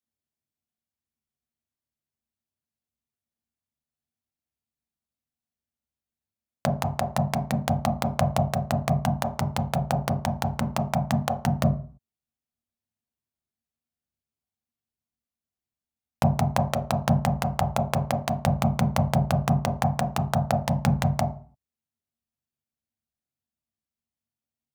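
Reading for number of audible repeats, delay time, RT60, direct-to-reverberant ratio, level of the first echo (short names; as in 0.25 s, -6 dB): none, none, 0.45 s, 3.0 dB, none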